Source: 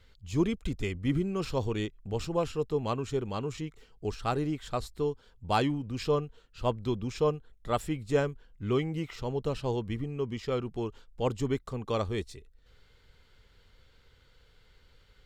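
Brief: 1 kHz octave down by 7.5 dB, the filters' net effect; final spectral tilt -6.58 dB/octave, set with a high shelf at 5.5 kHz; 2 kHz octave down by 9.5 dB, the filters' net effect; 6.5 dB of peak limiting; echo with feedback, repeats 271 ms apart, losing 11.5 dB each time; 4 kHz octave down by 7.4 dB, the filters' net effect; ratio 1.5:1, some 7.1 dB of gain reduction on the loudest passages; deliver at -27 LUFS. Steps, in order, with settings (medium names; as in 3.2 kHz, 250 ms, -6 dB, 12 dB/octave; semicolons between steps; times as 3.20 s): peaking EQ 1 kHz -8 dB; peaking EQ 2 kHz -8.5 dB; peaking EQ 4 kHz -9 dB; treble shelf 5.5 kHz +7 dB; compression 1.5:1, threshold -42 dBFS; peak limiter -28.5 dBFS; feedback delay 271 ms, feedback 27%, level -11.5 dB; trim +13 dB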